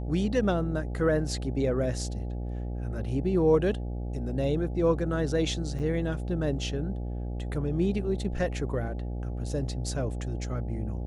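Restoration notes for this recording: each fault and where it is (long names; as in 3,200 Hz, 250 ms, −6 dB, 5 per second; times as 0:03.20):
mains buzz 60 Hz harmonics 14 −33 dBFS
0:05.79–0:05.80: drop-out 6.2 ms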